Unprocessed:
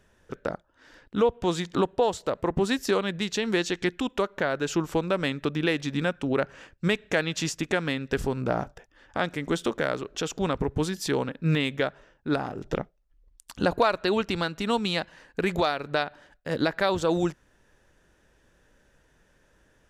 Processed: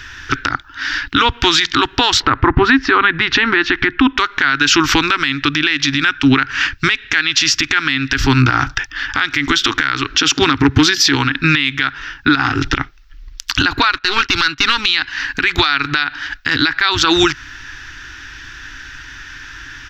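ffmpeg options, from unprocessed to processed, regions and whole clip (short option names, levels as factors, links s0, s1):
-filter_complex "[0:a]asettb=1/sr,asplit=3[s0][s1][s2];[s0]atrim=end=2.204[s3];[s1]atrim=start=2.2:end=4.18,asetpts=PTS-STARTPTS,afade=t=in:d=0.004:c=qsin,afade=t=out:st=1.976:d=0.004:c=qsin,lowpass=1400,acontrast=49[s4];[s2]atrim=start=4.176[s5];[s3][s4]acrossfade=d=0.004:c1=hsin:c2=qsin[s6];[s6][s5]acrossfade=d=0.004:c1=qsin:c2=hsin,asettb=1/sr,asplit=3[s7][s8][s9];[s7]atrim=end=10.174[s10];[s8]atrim=start=10.17:end=11.15,asetpts=PTS-STARTPTS,afade=t=in:d=0.004:c=qsin,afade=t=out:st=0.976:d=0.004:c=qsin,highpass=92,equalizer=f=280:t=o:w=2.6:g=6,asoftclip=type=hard:threshold=0.224[s11];[s9]atrim=start=11.146[s12];[s10][s11]acrossfade=d=0.004:c1=hsin:c2=qsin[s13];[s13][s12]acrossfade=d=0.004:c1=qsin:c2=hsin,asettb=1/sr,asplit=3[s14][s15][s16];[s14]atrim=end=13.914[s17];[s15]atrim=start=13.91:end=14.86,asetpts=PTS-STARTPTS,afade=t=in:d=0.004:c=qsin,afade=t=out:st=0.946:d=0.004:c=qsin,agate=range=0.126:threshold=0.0126:ratio=16:release=100:detection=peak,aeval=exprs='clip(val(0),-1,0.0473)':c=same[s18];[s16]atrim=start=14.856[s19];[s17][s18]acrossfade=d=0.004:c1=hsin:c2=qsin[s20];[s20][s19]acrossfade=d=0.004:c1=qsin:c2=hsin,firequalizer=gain_entry='entry(130,0);entry(190,-27);entry(270,1);entry(550,-28);entry(790,-7);entry(1400,10);entry(5500,10);entry(9200,-19);entry(14000,-2)':delay=0.05:min_phase=1,acompressor=threshold=0.0282:ratio=6,alimiter=level_in=20:limit=0.891:release=50:level=0:latency=1,volume=0.891"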